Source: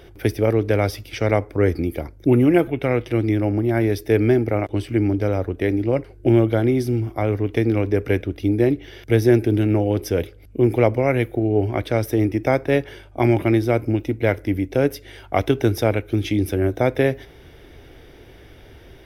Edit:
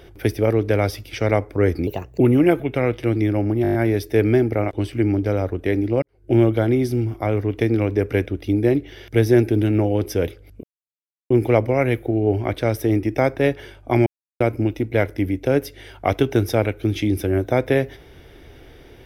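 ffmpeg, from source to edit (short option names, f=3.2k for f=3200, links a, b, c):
-filter_complex "[0:a]asplit=13[a][b][c][d][e][f][g][h][i][j][k][l][m];[a]atrim=end=1.874[n];[b]atrim=start=1.87:end=2.28,asetpts=PTS-STARTPTS,asetrate=54243,aresample=44100[o];[c]atrim=start=2.276:end=3.722[p];[d]atrim=start=3.698:end=3.722[q];[e]atrim=start=3.698:end=3.722[r];[f]atrim=start=3.698:end=3.722[s];[g]atrim=start=3.698:end=3.722[t];[h]atrim=start=3.698:end=3.722[u];[i]atrim=start=3.698:end=5.98,asetpts=PTS-STARTPTS,afade=t=out:st=2.278:d=0.004:c=hsin[v];[j]atrim=start=5.98:end=10.59,asetpts=PTS-STARTPTS,afade=t=in:d=0.33:c=qua,afade=t=out:st=4.606:d=0.004:c=hsin,apad=pad_dur=0.67[w];[k]atrim=start=10.59:end=13.35,asetpts=PTS-STARTPTS,afade=t=in:d=0.004:c=hsin,afade=t=out:st=2.756:d=0.004:c=hsin[x];[l]atrim=start=13.35:end=13.69,asetpts=PTS-STARTPTS,volume=0[y];[m]atrim=start=13.69,asetpts=PTS-STARTPTS,afade=t=in:d=0.004:c=hsin[z];[n][o]acrossfade=d=0.004:c1=hsin:c2=hsin[aa];[aa][p]acrossfade=d=0.004:c1=hsin:c2=hsin[ab];[ab][q]acrossfade=d=0.004:c1=hsin:c2=hsin[ac];[ac][r]acrossfade=d=0.004:c1=hsin:c2=hsin[ad];[ad][s]acrossfade=d=0.004:c1=hsin:c2=hsin[ae];[ae][t]acrossfade=d=0.004:c1=hsin:c2=hsin[af];[af][u]acrossfade=d=0.004:c1=hsin:c2=hsin[ag];[v][w][x][y][z]concat=n=5:v=0:a=1[ah];[ag][ah]acrossfade=d=0.004:c1=hsin:c2=hsin"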